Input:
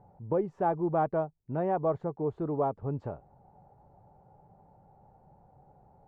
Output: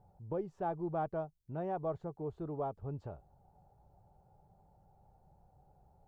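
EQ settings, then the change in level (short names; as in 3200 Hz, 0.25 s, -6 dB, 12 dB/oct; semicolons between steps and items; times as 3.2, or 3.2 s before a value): graphic EQ 125/250/500/1000/2000 Hz -6/-10/-7/-8/-9 dB; +1.5 dB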